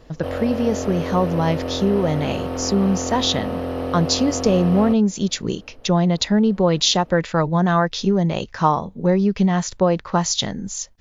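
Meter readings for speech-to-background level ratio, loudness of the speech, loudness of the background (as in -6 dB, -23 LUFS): 7.0 dB, -20.0 LUFS, -27.0 LUFS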